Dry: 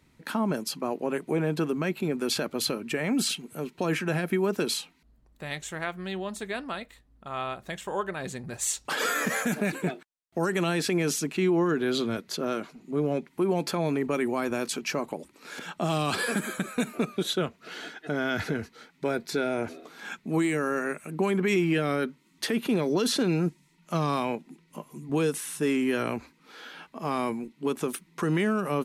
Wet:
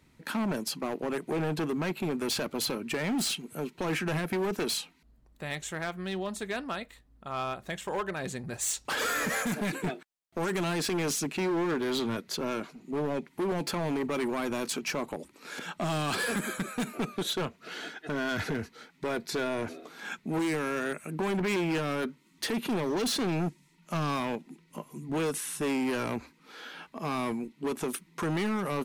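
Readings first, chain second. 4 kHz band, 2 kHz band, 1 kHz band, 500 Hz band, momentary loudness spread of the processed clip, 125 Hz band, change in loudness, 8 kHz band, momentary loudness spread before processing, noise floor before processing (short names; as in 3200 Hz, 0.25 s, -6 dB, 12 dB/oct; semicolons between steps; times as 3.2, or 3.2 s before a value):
-1.5 dB, -2.0 dB, -2.0 dB, -4.0 dB, 10 LU, -3.5 dB, -3.0 dB, -1.5 dB, 12 LU, -64 dBFS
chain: hard clip -26.5 dBFS, distortion -9 dB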